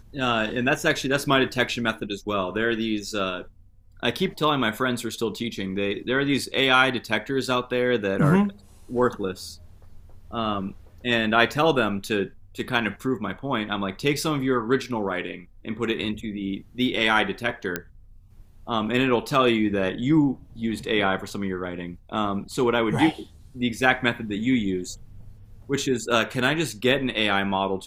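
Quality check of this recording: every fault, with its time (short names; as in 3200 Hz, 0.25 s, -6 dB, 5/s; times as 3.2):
17.76 pop -10 dBFS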